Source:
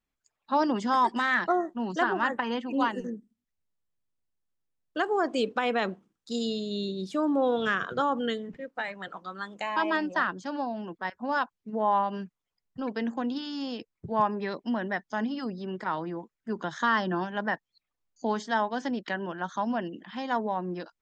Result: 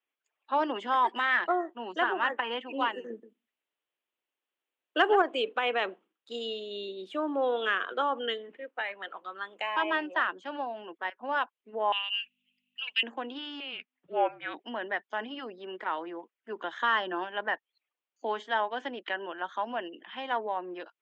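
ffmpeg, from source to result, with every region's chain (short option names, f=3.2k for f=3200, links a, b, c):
-filter_complex "[0:a]asettb=1/sr,asplit=3[a][b][c];[a]atrim=end=3.104[d];[b]atrim=start=3.1:end=5.22,asetpts=PTS-STARTPTS,afade=t=in:d=0.004:c=qsin,afade=t=out:st=2.116:d=0.004:c=qsin,acontrast=65,aecho=1:1:129:0.211,atrim=end_sample=93492[e];[c]atrim=start=5.216[f];[d][e]acrossfade=d=0.004:c1=hsin:c2=qsin[g];[g][f]acrossfade=d=0.004:c1=qsin:c2=hsin,asettb=1/sr,asplit=3[h][i][j];[h]atrim=end=11.924[k];[i]atrim=start=11.92:end=13.03,asetpts=PTS-STARTPTS,afade=t=in:d=0.004:c=qsin,afade=t=out:st=1.106:d=0.004:c=qsin,highpass=f=2.7k:t=q:w=10,highshelf=f=3.9k:g=10,aeval=exprs='val(0)+0.00126*(sin(2*PI*50*n/s)+sin(2*PI*2*50*n/s)/2+sin(2*PI*3*50*n/s)/3+sin(2*PI*4*50*n/s)/4+sin(2*PI*5*50*n/s)/5)':c=same[l];[j]atrim=start=13.026[m];[k][l]acrossfade=d=0.004:c1=hsin:c2=qsin[n];[n][m]acrossfade=d=0.004:c1=qsin:c2=hsin,asettb=1/sr,asplit=3[o][p][q];[o]atrim=end=13.604[r];[p]atrim=start=13.6:end=14.6,asetpts=PTS-STARTPTS,afade=t=in:d=0.004:c=qsin,afade=t=out:st=0.996:d=0.004:c=qsin,lowpass=f=3.3k:w=0.5412,lowpass=f=3.3k:w=1.3066,aemphasis=mode=production:type=75kf,afreqshift=-260[s];[q]atrim=start=14.596[t];[r][s]acrossfade=d=0.004:c1=hsin:c2=qsin[u];[u][t]acrossfade=d=0.004:c1=qsin:c2=hsin,highpass=f=330:w=0.5412,highpass=f=330:w=1.3066,highshelf=f=3.9k:t=q:w=3:g=-9,acontrast=24,volume=-7dB"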